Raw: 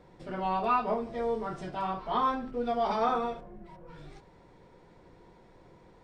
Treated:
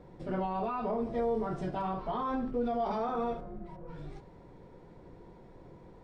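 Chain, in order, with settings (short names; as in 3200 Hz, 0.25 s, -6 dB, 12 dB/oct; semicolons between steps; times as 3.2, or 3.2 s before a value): limiter -27 dBFS, peak gain reduction 11 dB; tilt shelf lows +5 dB, about 940 Hz; resonator 140 Hz, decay 1.5 s, mix 50%; gain +6 dB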